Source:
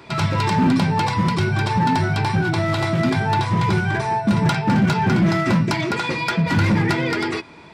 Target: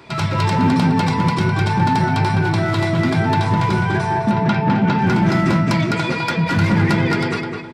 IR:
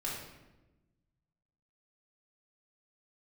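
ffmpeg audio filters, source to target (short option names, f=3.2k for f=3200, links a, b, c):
-filter_complex "[0:a]asplit=3[a][b][c];[a]afade=t=out:st=4.3:d=0.02[d];[b]highpass=110,lowpass=3.7k,afade=t=in:st=4.3:d=0.02,afade=t=out:st=4.97:d=0.02[e];[c]afade=t=in:st=4.97:d=0.02[f];[d][e][f]amix=inputs=3:normalize=0,asplit=2[g][h];[h]adelay=207,lowpass=f=2.3k:p=1,volume=-3dB,asplit=2[i][j];[j]adelay=207,lowpass=f=2.3k:p=1,volume=0.4,asplit=2[k][l];[l]adelay=207,lowpass=f=2.3k:p=1,volume=0.4,asplit=2[m][n];[n]adelay=207,lowpass=f=2.3k:p=1,volume=0.4,asplit=2[o][p];[p]adelay=207,lowpass=f=2.3k:p=1,volume=0.4[q];[i][k][m][o][q]amix=inputs=5:normalize=0[r];[g][r]amix=inputs=2:normalize=0"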